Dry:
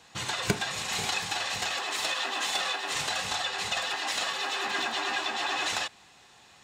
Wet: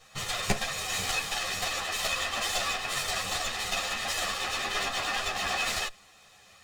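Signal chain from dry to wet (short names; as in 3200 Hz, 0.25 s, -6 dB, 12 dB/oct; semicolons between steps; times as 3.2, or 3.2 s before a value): minimum comb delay 1.6 ms; ensemble effect; gain +4.5 dB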